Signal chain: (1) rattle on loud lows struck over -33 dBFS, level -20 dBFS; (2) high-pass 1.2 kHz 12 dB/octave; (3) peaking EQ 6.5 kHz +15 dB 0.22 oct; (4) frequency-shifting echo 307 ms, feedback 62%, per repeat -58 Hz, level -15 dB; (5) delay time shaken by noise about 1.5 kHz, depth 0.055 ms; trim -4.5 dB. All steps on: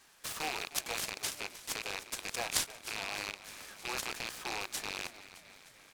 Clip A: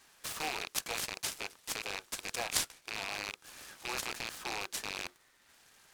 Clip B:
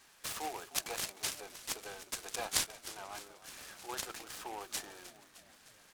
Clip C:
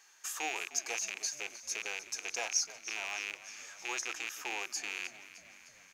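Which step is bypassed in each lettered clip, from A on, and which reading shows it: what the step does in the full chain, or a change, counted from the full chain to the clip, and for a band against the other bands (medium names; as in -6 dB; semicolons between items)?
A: 4, momentary loudness spread change -4 LU; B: 1, 2 kHz band -4.0 dB; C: 5, 8 kHz band +5.5 dB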